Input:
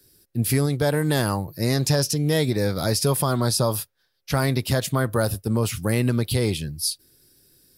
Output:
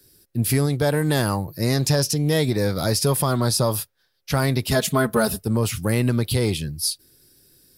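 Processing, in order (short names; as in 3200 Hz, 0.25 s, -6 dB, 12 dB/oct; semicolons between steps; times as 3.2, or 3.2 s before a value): 4.71–5.44 comb 4.7 ms, depth 100%; in parallel at -11.5 dB: soft clip -24 dBFS, distortion -8 dB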